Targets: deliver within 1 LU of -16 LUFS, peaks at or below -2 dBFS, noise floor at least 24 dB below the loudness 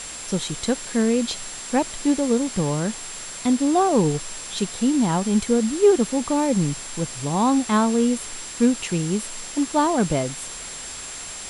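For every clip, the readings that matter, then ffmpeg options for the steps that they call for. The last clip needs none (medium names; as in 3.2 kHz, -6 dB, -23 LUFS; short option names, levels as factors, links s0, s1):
steady tone 7.5 kHz; tone level -36 dBFS; noise floor -35 dBFS; noise floor target -47 dBFS; loudness -22.5 LUFS; peak level -6.5 dBFS; loudness target -16.0 LUFS
-> -af "bandreject=f=7500:w=30"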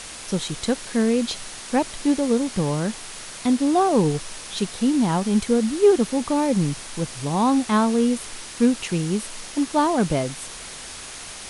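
steady tone not found; noise floor -37 dBFS; noise floor target -46 dBFS
-> -af "afftdn=nr=9:nf=-37"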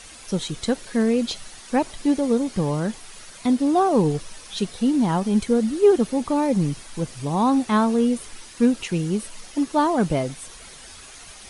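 noise floor -43 dBFS; noise floor target -47 dBFS
-> -af "afftdn=nr=6:nf=-43"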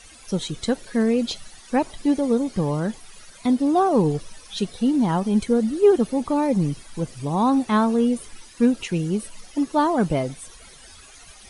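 noise floor -47 dBFS; loudness -22.5 LUFS; peak level -7.0 dBFS; loudness target -16.0 LUFS
-> -af "volume=2.11,alimiter=limit=0.794:level=0:latency=1"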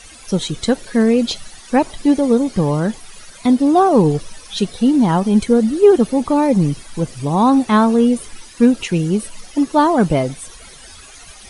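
loudness -16.0 LUFS; peak level -2.0 dBFS; noise floor -40 dBFS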